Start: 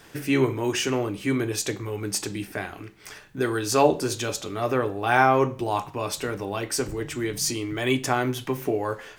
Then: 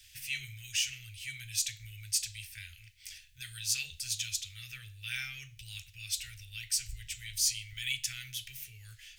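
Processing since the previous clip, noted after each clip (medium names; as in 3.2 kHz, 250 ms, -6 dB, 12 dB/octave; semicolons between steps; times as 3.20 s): inverse Chebyshev band-stop 190–1100 Hz, stop band 50 dB; trim -2 dB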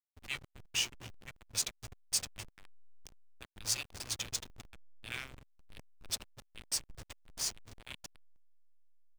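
fade out at the end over 2.80 s; delay 252 ms -11.5 dB; hysteresis with a dead band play -29.5 dBFS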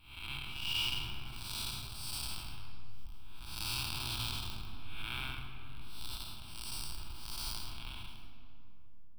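spectral blur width 298 ms; static phaser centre 1.9 kHz, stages 6; reverberation RT60 2.6 s, pre-delay 3 ms, DRR 4 dB; trim +10.5 dB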